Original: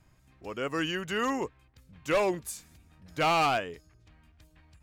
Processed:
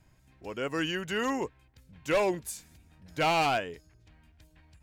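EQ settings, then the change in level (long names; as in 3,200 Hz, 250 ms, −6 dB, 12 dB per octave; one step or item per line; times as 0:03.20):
notch filter 1,200 Hz, Q 7.9
0.0 dB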